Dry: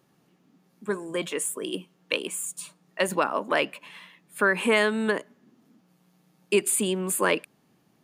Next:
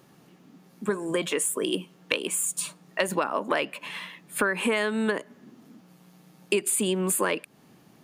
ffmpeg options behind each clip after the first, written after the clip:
-af "acompressor=threshold=0.0224:ratio=4,volume=2.82"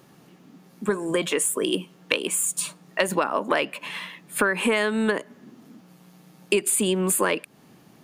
-af "aeval=exprs='0.562*(cos(1*acos(clip(val(0)/0.562,-1,1)))-cos(1*PI/2))+0.00708*(cos(4*acos(clip(val(0)/0.562,-1,1)))-cos(4*PI/2))':c=same,volume=1.41"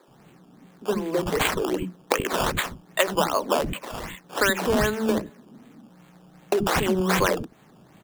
-filter_complex "[0:a]acrossover=split=770[s0][s1];[s1]acrusher=samples=15:mix=1:aa=0.000001:lfo=1:lforange=15:lforate=2.6[s2];[s0][s2]amix=inputs=2:normalize=0,acrossover=split=290[s3][s4];[s3]adelay=80[s5];[s5][s4]amix=inputs=2:normalize=0,volume=1.19"

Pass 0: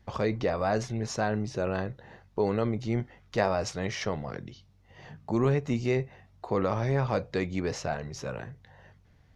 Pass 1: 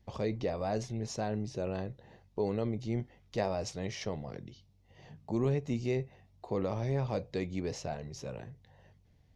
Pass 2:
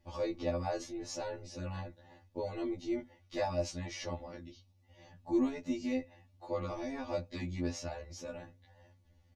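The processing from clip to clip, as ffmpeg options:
-af "equalizer=f=1400:t=o:w=1:g=-10,volume=0.596"
-af "aecho=1:1:3.5:0.78,afftfilt=real='re*2*eq(mod(b,4),0)':imag='im*2*eq(mod(b,4),0)':win_size=2048:overlap=0.75"

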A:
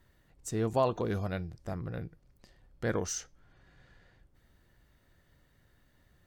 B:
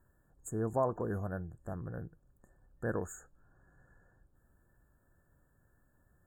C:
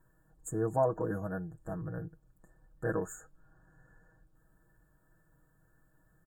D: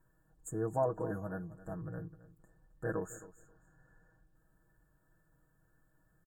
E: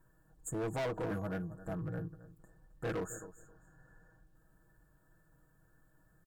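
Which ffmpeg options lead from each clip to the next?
-af "afftfilt=real='re*(1-between(b*sr/4096,1800,6600))':imag='im*(1-between(b*sr/4096,1800,6600))':win_size=4096:overlap=0.75,volume=0.668"
-af "aecho=1:1:6.3:0.81"
-af "aecho=1:1:266|532:0.141|0.0254,volume=0.668"
-af "asoftclip=type=hard:threshold=0.015,volume=1.5"

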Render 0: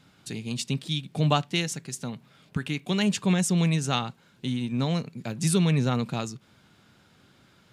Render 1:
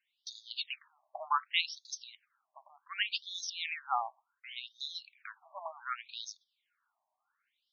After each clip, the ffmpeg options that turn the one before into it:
-af "agate=range=0.178:threshold=0.00562:ratio=16:detection=peak,afftfilt=real='re*between(b*sr/1024,800*pow(4800/800,0.5+0.5*sin(2*PI*0.67*pts/sr))/1.41,800*pow(4800/800,0.5+0.5*sin(2*PI*0.67*pts/sr))*1.41)':imag='im*between(b*sr/1024,800*pow(4800/800,0.5+0.5*sin(2*PI*0.67*pts/sr))/1.41,800*pow(4800/800,0.5+0.5*sin(2*PI*0.67*pts/sr))*1.41)':win_size=1024:overlap=0.75"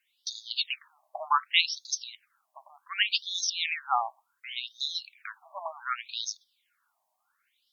-af "aemphasis=mode=production:type=cd,volume=1.88"

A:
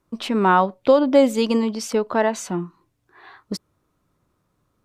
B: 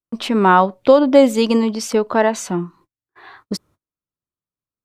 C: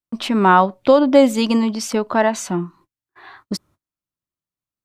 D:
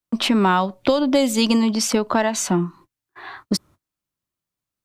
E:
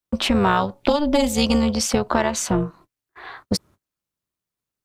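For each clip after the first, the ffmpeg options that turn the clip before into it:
-af "agate=range=0.0251:threshold=0.00282:ratio=16:detection=peak,volume=1.58"
-af "equalizer=f=460:w=5.8:g=-7.5"
-filter_complex "[0:a]acrossover=split=130|3000[s0][s1][s2];[s1]acompressor=threshold=0.0891:ratio=6[s3];[s0][s3][s2]amix=inputs=3:normalize=0,volume=1.78"
-af "tremolo=f=300:d=0.788,volume=1.33"

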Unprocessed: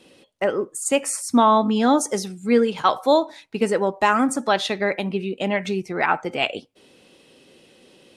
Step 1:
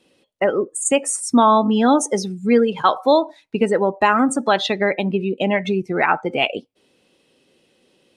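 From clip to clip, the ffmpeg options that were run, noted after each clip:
-filter_complex "[0:a]afftdn=nr=15:nf=-31,asplit=2[s0][s1];[s1]acompressor=threshold=0.0447:ratio=6,volume=1.33[s2];[s0][s2]amix=inputs=2:normalize=0"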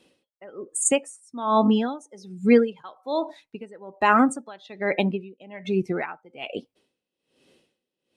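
-af "aeval=exprs='val(0)*pow(10,-27*(0.5-0.5*cos(2*PI*1.2*n/s))/20)':c=same"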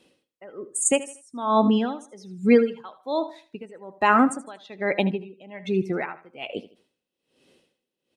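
-af "aecho=1:1:78|156|234:0.158|0.0507|0.0162"

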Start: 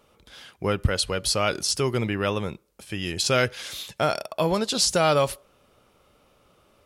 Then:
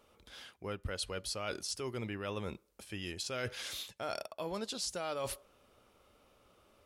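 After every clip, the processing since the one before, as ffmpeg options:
-af "areverse,acompressor=threshold=0.0316:ratio=6,areverse,equalizer=f=150:t=o:w=0.25:g=-12,volume=0.531"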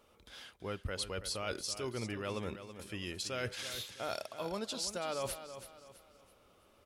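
-af "aecho=1:1:329|658|987|1316:0.282|0.104|0.0386|0.0143"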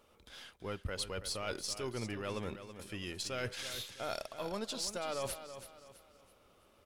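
-af "aeval=exprs='if(lt(val(0),0),0.708*val(0),val(0))':c=same,volume=1.12"

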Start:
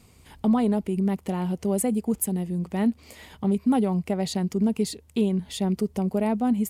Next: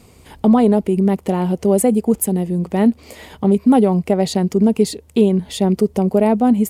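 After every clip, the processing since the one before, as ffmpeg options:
-af "equalizer=f=480:w=0.82:g=6,volume=2.11"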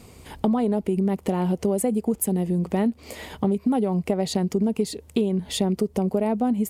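-af "acompressor=threshold=0.1:ratio=5"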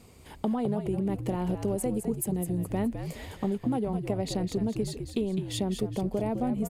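-filter_complex "[0:a]asplit=5[s0][s1][s2][s3][s4];[s1]adelay=208,afreqshift=-72,volume=0.422[s5];[s2]adelay=416,afreqshift=-144,volume=0.164[s6];[s3]adelay=624,afreqshift=-216,volume=0.0638[s7];[s4]adelay=832,afreqshift=-288,volume=0.0251[s8];[s0][s5][s6][s7][s8]amix=inputs=5:normalize=0,volume=0.447"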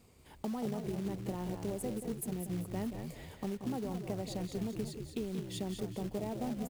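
-filter_complex "[0:a]asplit=2[s0][s1];[s1]adelay=180.8,volume=0.355,highshelf=f=4000:g=-4.07[s2];[s0][s2]amix=inputs=2:normalize=0,acrusher=bits=4:mode=log:mix=0:aa=0.000001,volume=0.355"

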